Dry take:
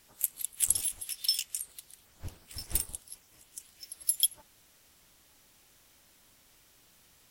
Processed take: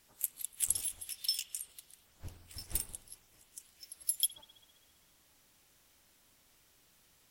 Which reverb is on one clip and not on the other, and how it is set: spring tank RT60 1.6 s, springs 47 ms, chirp 30 ms, DRR 12 dB; gain -5 dB

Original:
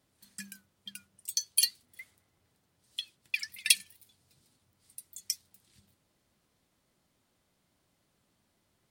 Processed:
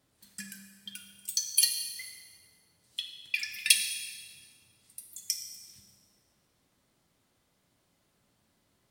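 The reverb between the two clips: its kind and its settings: plate-style reverb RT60 1.5 s, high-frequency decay 1×, DRR 4.5 dB; gain +1 dB

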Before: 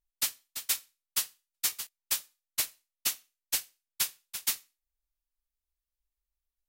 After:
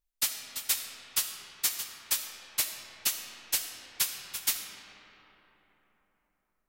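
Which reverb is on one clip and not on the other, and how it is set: digital reverb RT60 4.2 s, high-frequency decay 0.45×, pre-delay 25 ms, DRR 4.5 dB; gain +1 dB

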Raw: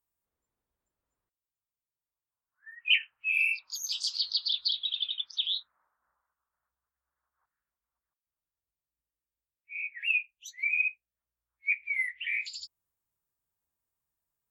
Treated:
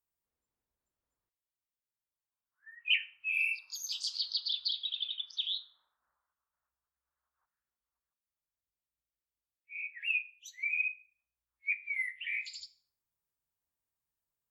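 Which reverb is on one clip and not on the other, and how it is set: Schroeder reverb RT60 0.44 s, combs from 27 ms, DRR 15.5 dB; gain -4.5 dB

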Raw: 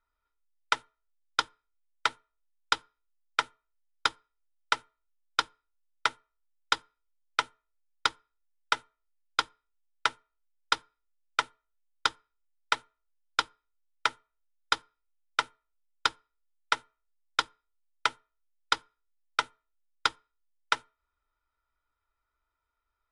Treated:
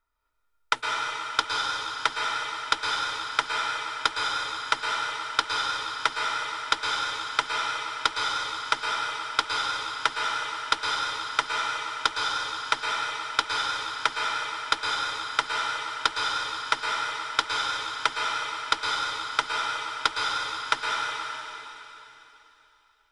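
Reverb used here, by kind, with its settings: plate-style reverb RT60 3.2 s, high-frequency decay 1×, pre-delay 0.1 s, DRR -3 dB; gain +2 dB

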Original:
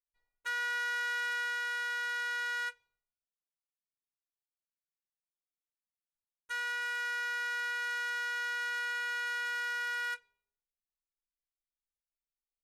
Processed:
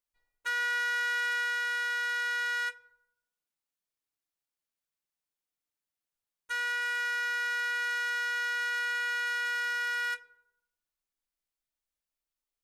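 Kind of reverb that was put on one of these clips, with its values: FDN reverb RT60 0.81 s, high-frequency decay 0.35×, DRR 14.5 dB; gain +3.5 dB

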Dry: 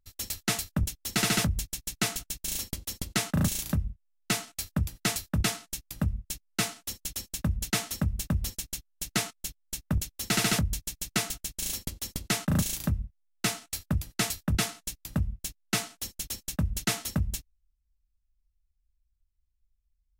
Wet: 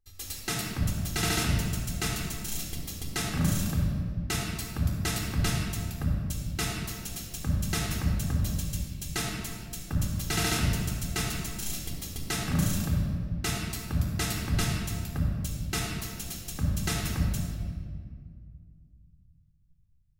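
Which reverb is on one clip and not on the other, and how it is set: shoebox room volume 3700 m³, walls mixed, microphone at 3.8 m; gain -6 dB

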